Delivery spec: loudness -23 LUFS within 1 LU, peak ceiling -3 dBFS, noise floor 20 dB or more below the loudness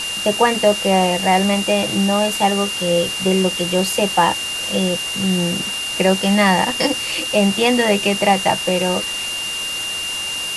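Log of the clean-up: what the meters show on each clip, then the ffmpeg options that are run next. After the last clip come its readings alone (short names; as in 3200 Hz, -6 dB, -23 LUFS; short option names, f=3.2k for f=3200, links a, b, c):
steady tone 2800 Hz; tone level -23 dBFS; noise floor -25 dBFS; noise floor target -37 dBFS; loudness -17.0 LUFS; peak -2.0 dBFS; loudness target -23.0 LUFS
-> -af "bandreject=f=2.8k:w=30"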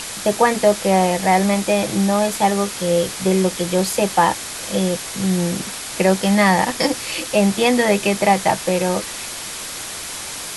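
steady tone none; noise floor -30 dBFS; noise floor target -39 dBFS
-> -af "afftdn=nr=9:nf=-30"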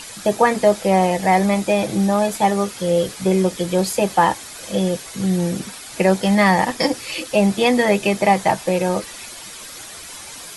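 noise floor -36 dBFS; noise floor target -39 dBFS
-> -af "afftdn=nr=6:nf=-36"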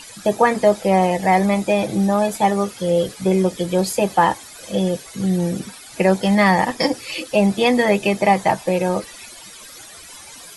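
noise floor -40 dBFS; loudness -18.5 LUFS; peak -2.5 dBFS; loudness target -23.0 LUFS
-> -af "volume=-4.5dB"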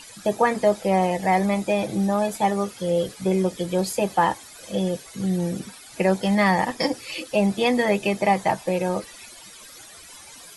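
loudness -23.0 LUFS; peak -7.0 dBFS; noise floor -45 dBFS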